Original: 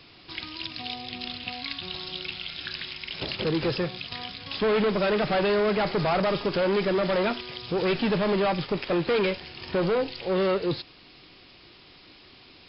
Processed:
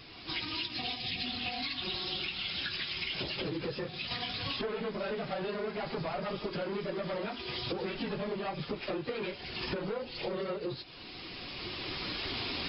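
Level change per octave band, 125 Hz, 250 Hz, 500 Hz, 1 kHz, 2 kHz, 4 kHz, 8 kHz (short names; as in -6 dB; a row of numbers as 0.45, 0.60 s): -9.0 dB, -10.0 dB, -11.5 dB, -9.5 dB, -6.0 dB, -2.0 dB, n/a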